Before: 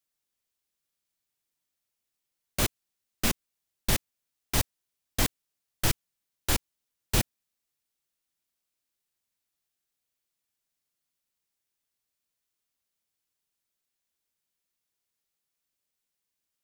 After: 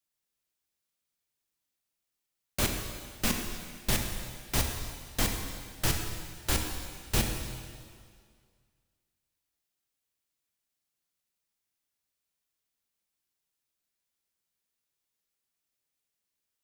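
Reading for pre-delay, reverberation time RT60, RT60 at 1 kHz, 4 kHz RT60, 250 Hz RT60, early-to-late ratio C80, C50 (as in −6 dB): 7 ms, 2.0 s, 2.0 s, 1.9 s, 2.0 s, 5.5 dB, 4.0 dB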